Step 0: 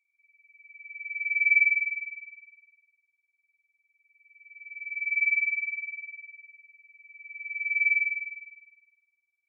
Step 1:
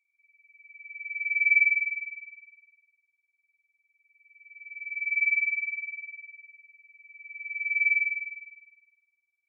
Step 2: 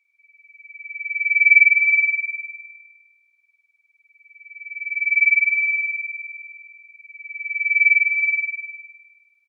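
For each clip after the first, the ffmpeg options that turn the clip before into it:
ffmpeg -i in.wav -af anull out.wav
ffmpeg -i in.wav -af "equalizer=frequency=2100:width=0.31:gain=9.5,aecho=1:1:369|738|1107:0.596|0.0953|0.0152" out.wav

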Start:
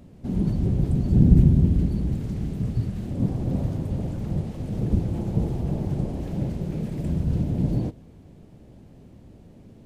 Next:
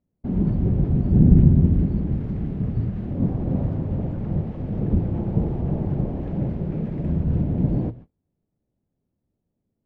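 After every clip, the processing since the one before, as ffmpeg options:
ffmpeg -i in.wav -af "lowpass=1900,bandreject=frequency=60:width_type=h:width=6,bandreject=frequency=120:width_type=h:width=6,agate=range=-32dB:threshold=-41dB:ratio=16:detection=peak,volume=2.5dB" out.wav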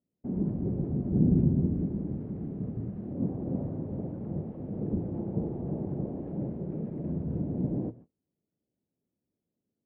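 ffmpeg -i in.wav -af "bandpass=frequency=360:width_type=q:width=0.78:csg=0,volume=-4.5dB" out.wav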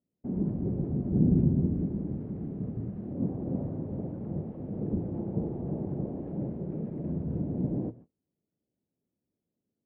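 ffmpeg -i in.wav -af anull out.wav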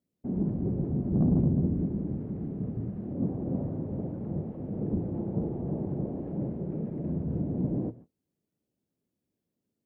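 ffmpeg -i in.wav -af "asoftclip=type=tanh:threshold=-18dB,volume=1.5dB" out.wav

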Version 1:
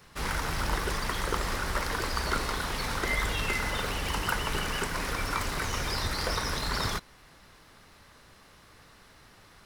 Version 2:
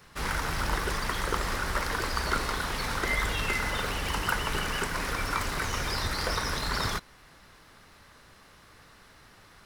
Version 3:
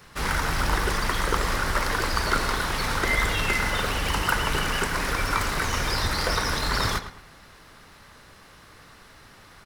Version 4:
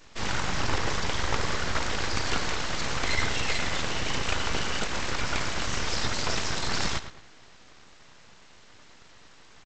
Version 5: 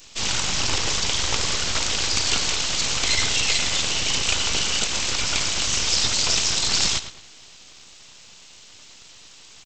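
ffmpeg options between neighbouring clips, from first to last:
ffmpeg -i in.wav -af "equalizer=frequency=1500:width=1.5:gain=2" out.wav
ffmpeg -i in.wav -filter_complex "[0:a]asplit=2[link_01][link_02];[link_02]adelay=109,lowpass=frequency=3700:poles=1,volume=-11dB,asplit=2[link_03][link_04];[link_04]adelay=109,lowpass=frequency=3700:poles=1,volume=0.33,asplit=2[link_05][link_06];[link_06]adelay=109,lowpass=frequency=3700:poles=1,volume=0.33,asplit=2[link_07][link_08];[link_08]adelay=109,lowpass=frequency=3700:poles=1,volume=0.33[link_09];[link_01][link_03][link_05][link_07][link_09]amix=inputs=5:normalize=0,volume=4.5dB" out.wav
ffmpeg -i in.wav -af "equalizer=frequency=1300:width=1.5:gain=-3.5,aresample=16000,aeval=exprs='abs(val(0))':channel_layout=same,aresample=44100" out.wav
ffmpeg -i in.wav -af "aexciter=amount=4.2:drive=3.8:freq=2500" out.wav

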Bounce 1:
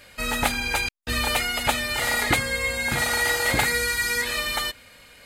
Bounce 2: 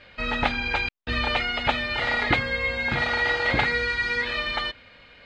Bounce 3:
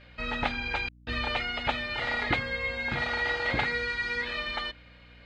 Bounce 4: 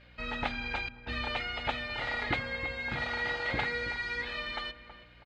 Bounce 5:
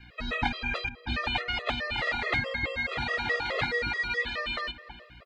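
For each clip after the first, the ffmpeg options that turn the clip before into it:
ffmpeg -i in.wav -af "lowpass=frequency=3900:width=0.5412,lowpass=frequency=3900:width=1.3066" out.wav
ffmpeg -i in.wav -af "aeval=exprs='val(0)+0.00398*(sin(2*PI*60*n/s)+sin(2*PI*2*60*n/s)/2+sin(2*PI*3*60*n/s)/3+sin(2*PI*4*60*n/s)/4+sin(2*PI*5*60*n/s)/5)':channel_layout=same,volume=-5.5dB" out.wav
ffmpeg -i in.wav -filter_complex "[0:a]asplit=2[link_01][link_02];[link_02]adelay=324,lowpass=frequency=1300:poles=1,volume=-11dB,asplit=2[link_03][link_04];[link_04]adelay=324,lowpass=frequency=1300:poles=1,volume=0.4,asplit=2[link_05][link_06];[link_06]adelay=324,lowpass=frequency=1300:poles=1,volume=0.4,asplit=2[link_07][link_08];[link_08]adelay=324,lowpass=frequency=1300:poles=1,volume=0.4[link_09];[link_01][link_03][link_05][link_07][link_09]amix=inputs=5:normalize=0,volume=-4dB" out.wav
ffmpeg -i in.wav -filter_complex "[0:a]acrossover=split=350|1200[link_01][link_02][link_03];[link_02]asoftclip=type=hard:threshold=-30dB[link_04];[link_01][link_04][link_03]amix=inputs=3:normalize=0,afftfilt=real='re*gt(sin(2*PI*4.7*pts/sr)*(1-2*mod(floor(b*sr/1024/350),2)),0)':imag='im*gt(sin(2*PI*4.7*pts/sr)*(1-2*mod(floor(b*sr/1024/350),2)),0)':win_size=1024:overlap=0.75,volume=7.5dB" out.wav

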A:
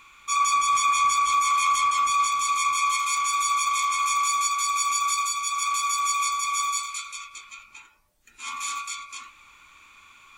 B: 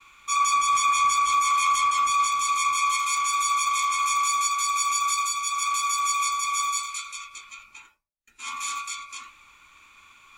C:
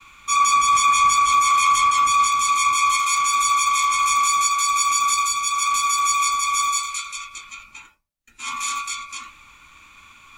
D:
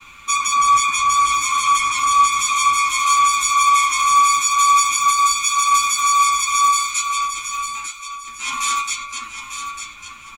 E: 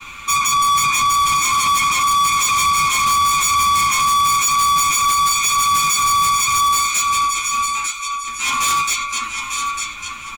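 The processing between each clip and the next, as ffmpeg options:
ffmpeg -i in.wav -af "agate=range=-33dB:threshold=-50dB:ratio=3:detection=peak" out.wav
ffmpeg -i in.wav -filter_complex "[0:a]equalizer=frequency=390:width=7.2:gain=-6,acrossover=split=340|2600[link_01][link_02][link_03];[link_01]acontrast=46[link_04];[link_04][link_02][link_03]amix=inputs=3:normalize=0,volume=5dB" out.wav
ffmpeg -i in.wav -filter_complex "[0:a]alimiter=limit=-13.5dB:level=0:latency=1:release=163,aecho=1:1:898|1796|2694|3592:0.376|0.113|0.0338|0.0101,asplit=2[link_01][link_02];[link_02]adelay=7.9,afreqshift=-2[link_03];[link_01][link_03]amix=inputs=2:normalize=1,volume=8dB" out.wav
ffmpeg -i in.wav -af "asoftclip=type=tanh:threshold=-21.5dB,volume=8dB" out.wav

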